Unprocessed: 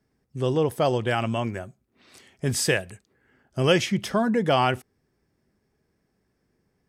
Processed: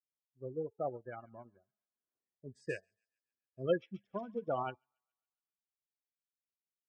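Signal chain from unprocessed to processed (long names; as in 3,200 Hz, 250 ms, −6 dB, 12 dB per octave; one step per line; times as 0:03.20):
adaptive Wiener filter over 15 samples
low-pass filter 8,600 Hz
hum removal 219.8 Hz, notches 33
pitch vibrato 5 Hz 39 cents
bass and treble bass −5 dB, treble −6 dB
tuned comb filter 66 Hz, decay 0.64 s, harmonics all, mix 40%
gate on every frequency bin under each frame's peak −15 dB strong
delay with a high-pass on its return 138 ms, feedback 57%, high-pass 1,600 Hz, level −12.5 dB
expander for the loud parts 2.5 to 1, over −44 dBFS
level −3.5 dB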